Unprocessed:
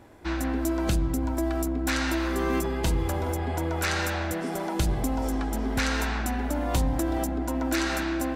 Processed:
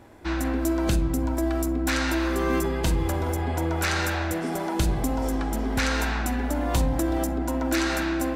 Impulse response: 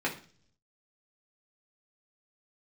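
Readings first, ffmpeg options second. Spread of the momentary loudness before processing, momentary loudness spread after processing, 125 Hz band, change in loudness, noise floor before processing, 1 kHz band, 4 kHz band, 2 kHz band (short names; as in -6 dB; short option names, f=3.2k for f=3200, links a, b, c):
3 LU, 3 LU, +2.0 dB, +2.0 dB, -31 dBFS, +1.5 dB, +1.5 dB, +2.0 dB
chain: -filter_complex "[0:a]asplit=2[a][b];[1:a]atrim=start_sample=2205,adelay=40[c];[b][c]afir=irnorm=-1:irlink=0,volume=-19dB[d];[a][d]amix=inputs=2:normalize=0,volume=1.5dB"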